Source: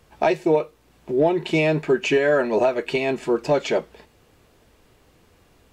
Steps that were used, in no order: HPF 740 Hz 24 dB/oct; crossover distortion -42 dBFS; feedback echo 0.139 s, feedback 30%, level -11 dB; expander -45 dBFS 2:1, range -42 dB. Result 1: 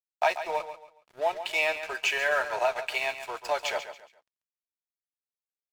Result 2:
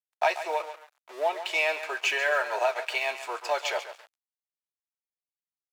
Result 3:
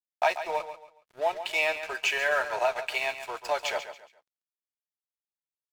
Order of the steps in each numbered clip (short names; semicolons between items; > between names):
expander > HPF > crossover distortion > feedback echo; feedback echo > expander > crossover distortion > HPF; HPF > expander > crossover distortion > feedback echo